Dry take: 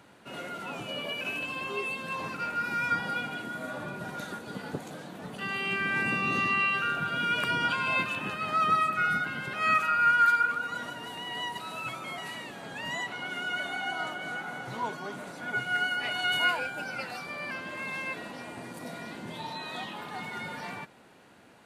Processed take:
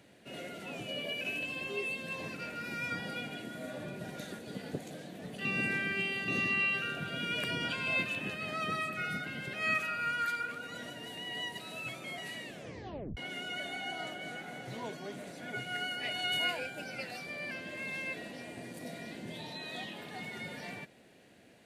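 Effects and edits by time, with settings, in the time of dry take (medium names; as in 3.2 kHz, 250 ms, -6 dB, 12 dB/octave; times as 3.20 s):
5.45–6.28 s: reverse
12.50 s: tape stop 0.67 s
whole clip: high-order bell 1.1 kHz -10.5 dB 1 oct; trim -2.5 dB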